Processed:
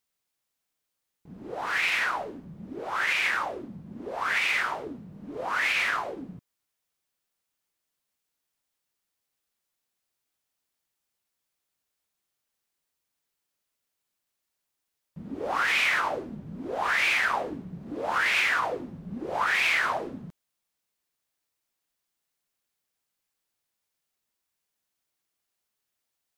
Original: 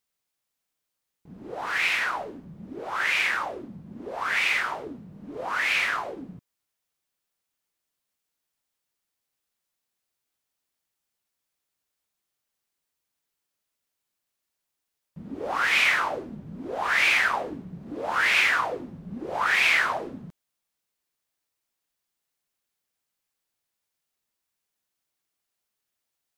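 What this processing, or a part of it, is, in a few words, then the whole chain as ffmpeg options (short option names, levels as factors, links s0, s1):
clipper into limiter: -af "asoftclip=type=hard:threshold=0.224,alimiter=limit=0.15:level=0:latency=1:release=39"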